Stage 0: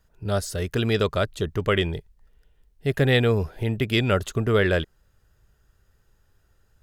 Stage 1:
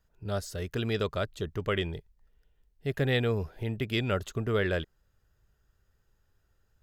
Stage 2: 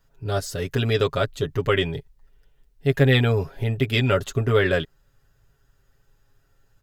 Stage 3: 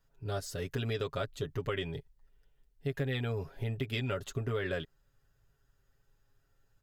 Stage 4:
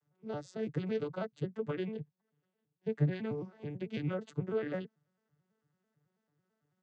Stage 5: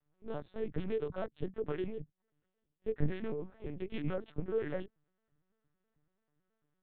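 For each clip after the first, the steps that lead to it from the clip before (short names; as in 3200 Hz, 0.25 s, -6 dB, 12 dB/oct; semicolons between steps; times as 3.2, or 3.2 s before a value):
bell 9500 Hz -6.5 dB 0.27 oct; gain -7.5 dB
comb 7.3 ms, depth 75%; gain +6.5 dB
compressor 6:1, threshold -21 dBFS, peak gain reduction 9 dB; gain -9 dB
arpeggiated vocoder major triad, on D3, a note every 0.11 s
LPC vocoder at 8 kHz pitch kept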